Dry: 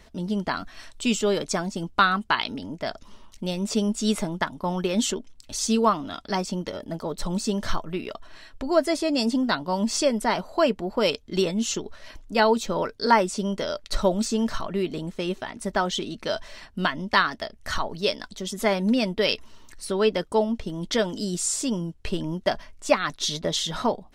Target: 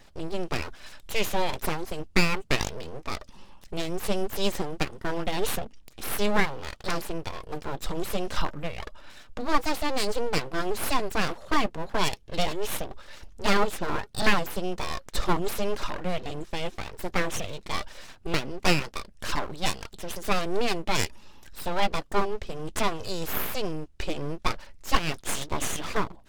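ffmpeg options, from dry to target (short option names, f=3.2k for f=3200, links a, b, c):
-af "aeval=exprs='abs(val(0))':c=same,asetrate=40517,aresample=44100"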